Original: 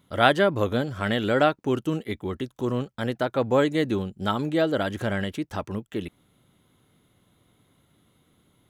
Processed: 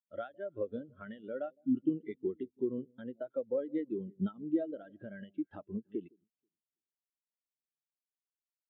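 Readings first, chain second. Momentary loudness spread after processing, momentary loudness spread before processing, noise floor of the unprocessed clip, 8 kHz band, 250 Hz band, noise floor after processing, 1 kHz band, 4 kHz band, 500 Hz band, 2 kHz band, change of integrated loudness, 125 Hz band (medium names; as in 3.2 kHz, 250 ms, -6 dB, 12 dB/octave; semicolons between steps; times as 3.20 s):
11 LU, 11 LU, -66 dBFS, under -30 dB, -9.0 dB, under -85 dBFS, -25.5 dB, under -30 dB, -13.0 dB, -26.0 dB, -12.5 dB, -18.5 dB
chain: frequency weighting D; spectral selection erased 1.50–1.75 s, 280–3200 Hz; random-step tremolo; compression 6:1, threshold -32 dBFS, peak gain reduction 18 dB; treble shelf 2.5 kHz -11.5 dB; echo whose repeats swap between lows and highs 161 ms, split 830 Hz, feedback 63%, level -12 dB; spectral contrast expander 2.5:1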